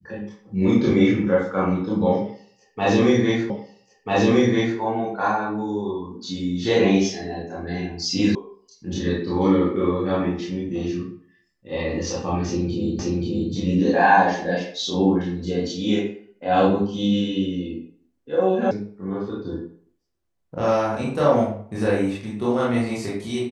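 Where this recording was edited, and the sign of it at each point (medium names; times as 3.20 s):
3.50 s: repeat of the last 1.29 s
8.35 s: sound stops dead
12.99 s: repeat of the last 0.53 s
18.71 s: sound stops dead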